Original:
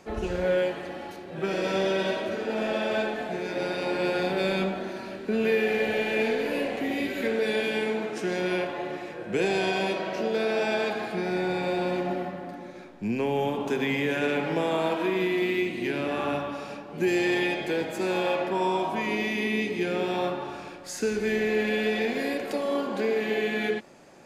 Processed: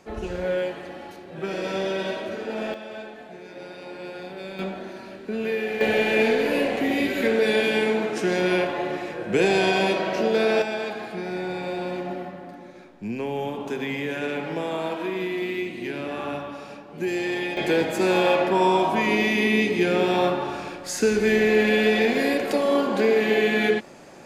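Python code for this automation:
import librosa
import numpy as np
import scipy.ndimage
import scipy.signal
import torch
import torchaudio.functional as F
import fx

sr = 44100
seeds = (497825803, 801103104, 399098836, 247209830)

y = fx.gain(x, sr, db=fx.steps((0.0, -1.0), (2.74, -10.0), (4.59, -2.5), (5.81, 5.5), (10.62, -2.0), (17.57, 6.5)))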